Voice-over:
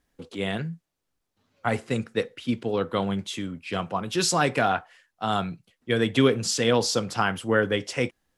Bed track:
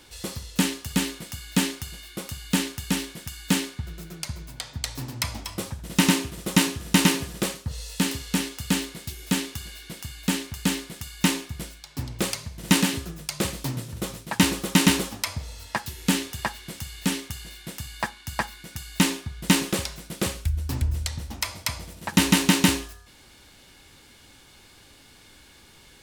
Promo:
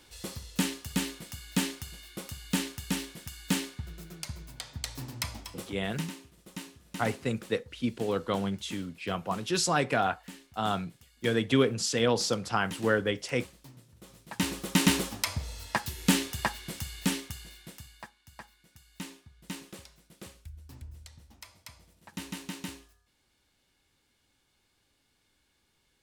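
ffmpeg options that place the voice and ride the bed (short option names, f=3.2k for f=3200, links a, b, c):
-filter_complex "[0:a]adelay=5350,volume=-4dB[a];[1:a]volume=14.5dB,afade=t=out:st=5.2:d=0.91:silence=0.158489,afade=t=in:st=14.03:d=1.3:silence=0.0944061,afade=t=out:st=16.77:d=1.32:silence=0.112202[b];[a][b]amix=inputs=2:normalize=0"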